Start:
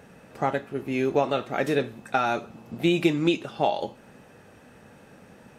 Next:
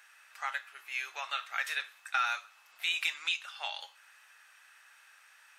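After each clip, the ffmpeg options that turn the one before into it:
-af "highpass=f=1300:w=0.5412,highpass=f=1300:w=1.3066"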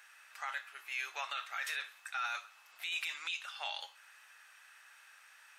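-af "alimiter=level_in=1.58:limit=0.0631:level=0:latency=1:release=12,volume=0.631"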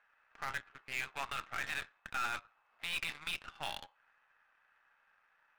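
-af "adynamicsmooth=sensitivity=8:basefreq=1100,aeval=exprs='0.0376*(cos(1*acos(clip(val(0)/0.0376,-1,1)))-cos(1*PI/2))+0.00211*(cos(7*acos(clip(val(0)/0.0376,-1,1)))-cos(7*PI/2))+0.00335*(cos(8*acos(clip(val(0)/0.0376,-1,1)))-cos(8*PI/2))':c=same,volume=1.19"

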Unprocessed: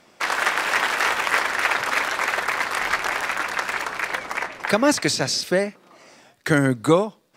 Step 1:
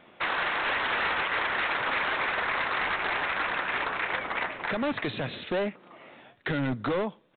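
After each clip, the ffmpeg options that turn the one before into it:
-af "alimiter=limit=0.224:level=0:latency=1:release=108,aresample=8000,asoftclip=type=hard:threshold=0.0596,aresample=44100"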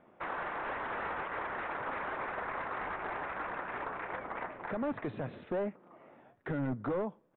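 -af "lowpass=1200,volume=0.562"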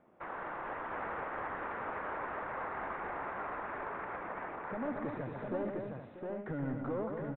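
-filter_complex "[0:a]acrossover=split=2500[s0][s1];[s1]acompressor=threshold=0.00141:ratio=4:attack=1:release=60[s2];[s0][s2]amix=inputs=2:normalize=0,aemphasis=mode=reproduction:type=75kf,asplit=2[s3][s4];[s4]aecho=0:1:123|230|637|710|783:0.473|0.501|0.188|0.631|0.355[s5];[s3][s5]amix=inputs=2:normalize=0,volume=0.668"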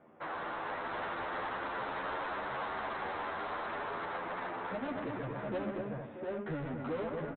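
-filter_complex "[0:a]highpass=f=82:p=1,aresample=8000,asoftclip=type=tanh:threshold=0.0106,aresample=44100,asplit=2[s0][s1];[s1]adelay=10.2,afreqshift=0.31[s2];[s0][s2]amix=inputs=2:normalize=1,volume=2.66"

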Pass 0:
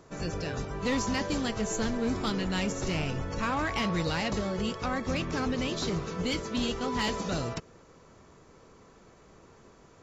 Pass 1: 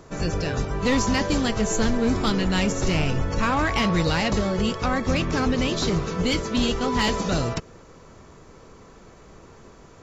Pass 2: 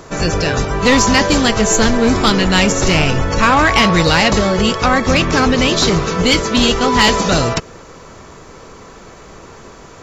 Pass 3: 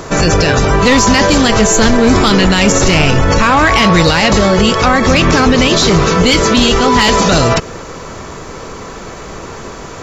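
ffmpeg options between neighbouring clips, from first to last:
-af "lowshelf=f=61:g=7,volume=2.24"
-af "acontrast=75,lowshelf=f=450:g=-6,volume=2.11"
-af "alimiter=level_in=3.55:limit=0.891:release=50:level=0:latency=1,volume=0.891"

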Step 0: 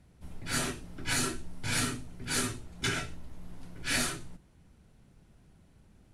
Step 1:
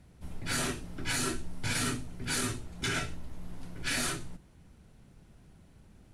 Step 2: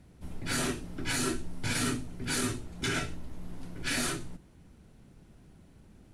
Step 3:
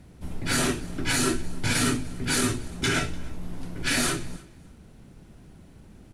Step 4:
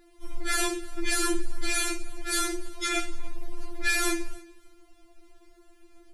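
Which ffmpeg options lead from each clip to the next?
-af "alimiter=level_in=1.06:limit=0.0631:level=0:latency=1:release=26,volume=0.944,volume=1.41"
-af "equalizer=f=300:t=o:w=1.3:g=4"
-af "aecho=1:1:296|592:0.0668|0.0114,volume=2.11"
-af "afftfilt=real='re*4*eq(mod(b,16),0)':imag='im*4*eq(mod(b,16),0)':win_size=2048:overlap=0.75"

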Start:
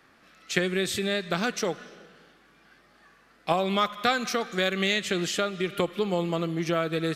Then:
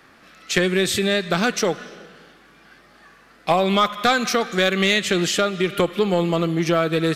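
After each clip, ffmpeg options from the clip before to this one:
-af "asoftclip=type=tanh:threshold=0.188,volume=2.51"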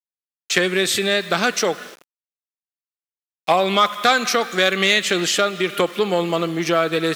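-af "agate=range=0.224:threshold=0.0112:ratio=16:detection=peak,aeval=exprs='val(0)*gte(abs(val(0)),0.00944)':c=same,highpass=f=400:p=1,volume=1.41"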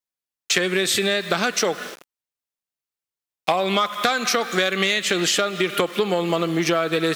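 -af "acompressor=threshold=0.0891:ratio=6,volume=1.58"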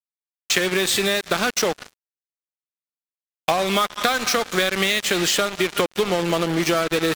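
-af "acrusher=bits=3:mix=0:aa=0.5"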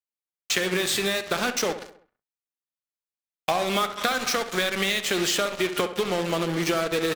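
-filter_complex "[0:a]flanger=delay=4.2:depth=9.8:regen=82:speed=0.43:shape=sinusoidal,asplit=2[s0][s1];[s1]adelay=66,lowpass=f=2800:p=1,volume=0.282,asplit=2[s2][s3];[s3]adelay=66,lowpass=f=2800:p=1,volume=0.5,asplit=2[s4][s5];[s5]adelay=66,lowpass=f=2800:p=1,volume=0.5,asplit=2[s6][s7];[s7]adelay=66,lowpass=f=2800:p=1,volume=0.5,asplit=2[s8][s9];[s9]adelay=66,lowpass=f=2800:p=1,volume=0.5[s10];[s0][s2][s4][s6][s8][s10]amix=inputs=6:normalize=0"

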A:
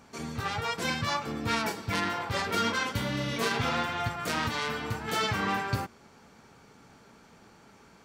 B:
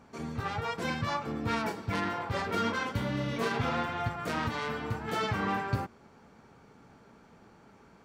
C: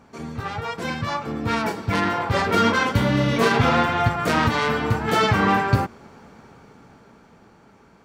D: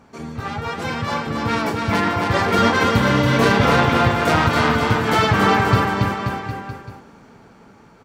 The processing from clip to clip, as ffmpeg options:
-af "highshelf=f=2400:g=-10.5"
-af "dynaudnorm=f=290:g=13:m=2.51,volume=1.68"
-af "aecho=1:1:280|532|758.8|962.9|1147:0.631|0.398|0.251|0.158|0.1,volume=1.19"

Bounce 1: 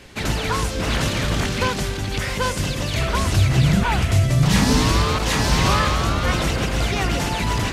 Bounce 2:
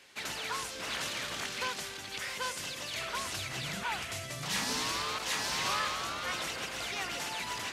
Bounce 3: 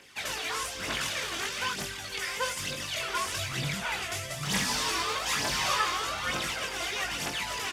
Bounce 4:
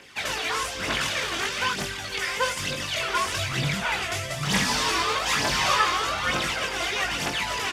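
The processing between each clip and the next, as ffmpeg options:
-af "highpass=f=1200:p=1,volume=0.355"
-filter_complex "[0:a]bandreject=f=4100:w=14,aphaser=in_gain=1:out_gain=1:delay=3:decay=0.58:speed=1.1:type=triangular,asplit=2[s0][s1];[s1]adelay=21,volume=0.531[s2];[s0][s2]amix=inputs=2:normalize=0,volume=1.19"
-af "highshelf=f=6600:g=-7.5,volume=2.11"

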